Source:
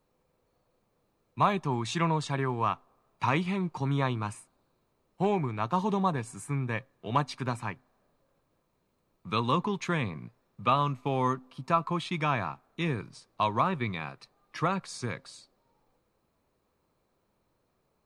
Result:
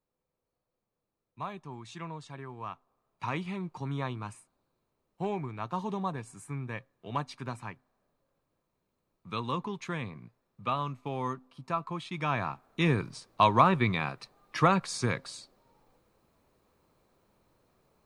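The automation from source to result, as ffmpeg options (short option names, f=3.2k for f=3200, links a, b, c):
-af "volume=5dB,afade=t=in:st=2.49:d=0.99:silence=0.421697,afade=t=in:st=12.11:d=0.85:silence=0.281838"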